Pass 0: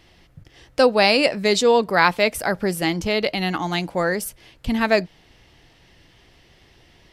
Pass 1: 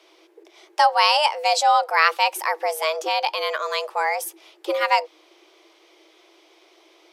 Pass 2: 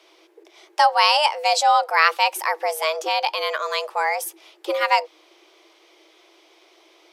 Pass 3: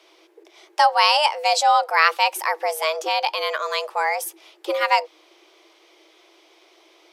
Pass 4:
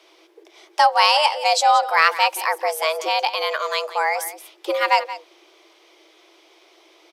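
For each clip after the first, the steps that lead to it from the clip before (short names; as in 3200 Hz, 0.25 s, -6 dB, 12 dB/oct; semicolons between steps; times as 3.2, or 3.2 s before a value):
bell 110 Hz -6.5 dB 1 oct; frequency shift +310 Hz; gain -1 dB
low shelf 270 Hz -5 dB; gain +1 dB
nothing audible
in parallel at -11.5 dB: hard clip -9.5 dBFS, distortion -18 dB; on the sum: echo 0.177 s -14.5 dB; gain -1 dB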